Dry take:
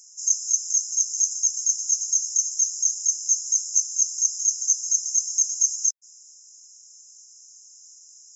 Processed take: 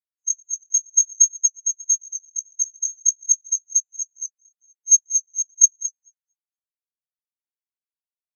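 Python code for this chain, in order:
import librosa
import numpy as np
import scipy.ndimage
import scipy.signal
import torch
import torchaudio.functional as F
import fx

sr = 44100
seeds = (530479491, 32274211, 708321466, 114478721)

y = fx.reverse_delay_fb(x, sr, ms=117, feedback_pct=71, wet_db=-8.0)
y = fx.level_steps(y, sr, step_db=14, at=(4.3, 4.88))
y = fx.spectral_expand(y, sr, expansion=4.0)
y = y * librosa.db_to_amplitude(5.0)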